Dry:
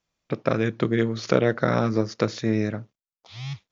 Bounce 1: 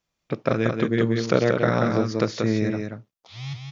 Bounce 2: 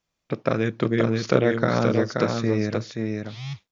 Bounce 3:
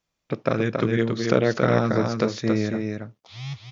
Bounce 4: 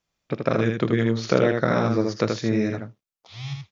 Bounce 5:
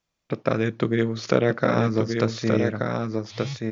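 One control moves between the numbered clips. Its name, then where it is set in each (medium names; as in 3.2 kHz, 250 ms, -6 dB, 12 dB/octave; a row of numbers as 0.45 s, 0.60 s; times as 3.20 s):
delay, time: 183 ms, 528 ms, 276 ms, 79 ms, 1179 ms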